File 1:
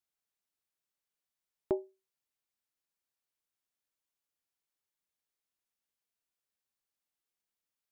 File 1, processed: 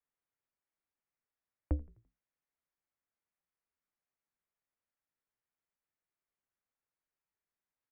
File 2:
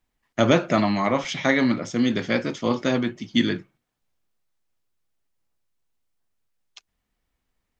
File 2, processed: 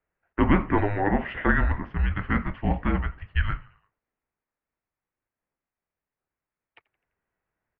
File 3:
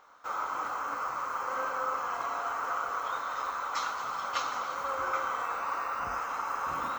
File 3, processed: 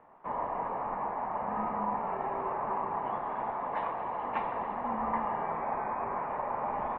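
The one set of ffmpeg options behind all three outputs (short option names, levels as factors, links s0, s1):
-filter_complex "[0:a]bandreject=f=60:t=h:w=6,bandreject=f=120:t=h:w=6,bandreject=f=180:t=h:w=6,asplit=2[s0][s1];[s1]asplit=4[s2][s3][s4][s5];[s2]adelay=85,afreqshift=-63,volume=0.075[s6];[s3]adelay=170,afreqshift=-126,volume=0.0422[s7];[s4]adelay=255,afreqshift=-189,volume=0.0234[s8];[s5]adelay=340,afreqshift=-252,volume=0.0132[s9];[s6][s7][s8][s9]amix=inputs=4:normalize=0[s10];[s0][s10]amix=inputs=2:normalize=0,highpass=f=240:t=q:w=0.5412,highpass=f=240:t=q:w=1.307,lowpass=f=2600:t=q:w=0.5176,lowpass=f=2600:t=q:w=0.7071,lowpass=f=2600:t=q:w=1.932,afreqshift=-310"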